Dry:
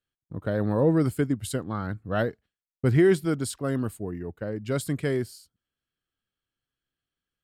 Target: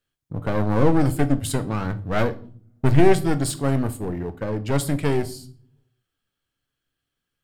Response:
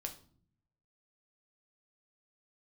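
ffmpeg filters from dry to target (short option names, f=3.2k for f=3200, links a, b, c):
-filter_complex "[0:a]aeval=exprs='clip(val(0),-1,0.0282)':c=same,asplit=2[a][b];[1:a]atrim=start_sample=2205[c];[b][c]afir=irnorm=-1:irlink=0,volume=4dB[d];[a][d]amix=inputs=2:normalize=0"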